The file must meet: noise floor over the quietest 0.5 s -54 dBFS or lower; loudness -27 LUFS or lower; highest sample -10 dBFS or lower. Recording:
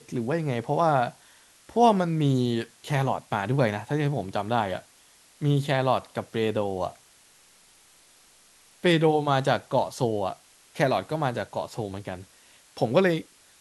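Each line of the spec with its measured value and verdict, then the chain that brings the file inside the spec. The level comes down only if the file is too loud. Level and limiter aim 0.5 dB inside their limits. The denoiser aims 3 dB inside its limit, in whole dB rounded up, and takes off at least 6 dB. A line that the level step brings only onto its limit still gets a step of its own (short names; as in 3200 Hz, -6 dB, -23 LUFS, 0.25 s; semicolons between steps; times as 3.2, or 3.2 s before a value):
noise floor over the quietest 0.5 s -57 dBFS: OK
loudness -26.0 LUFS: fail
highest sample -6.5 dBFS: fail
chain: gain -1.5 dB; limiter -10.5 dBFS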